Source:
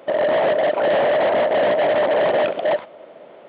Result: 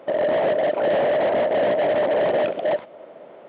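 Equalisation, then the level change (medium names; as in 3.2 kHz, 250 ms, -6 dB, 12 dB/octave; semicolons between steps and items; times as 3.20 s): dynamic bell 1.1 kHz, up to -5 dB, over -33 dBFS, Q 1; treble shelf 3 kHz -9 dB; 0.0 dB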